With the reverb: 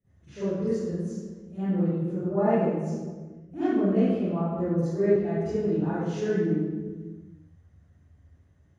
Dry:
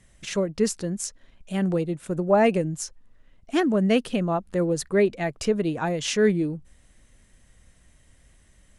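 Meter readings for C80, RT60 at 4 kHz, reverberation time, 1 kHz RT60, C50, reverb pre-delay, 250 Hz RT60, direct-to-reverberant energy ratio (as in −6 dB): −3.5 dB, 0.95 s, 1.5 s, 1.3 s, −8.5 dB, 40 ms, can't be measured, −19.0 dB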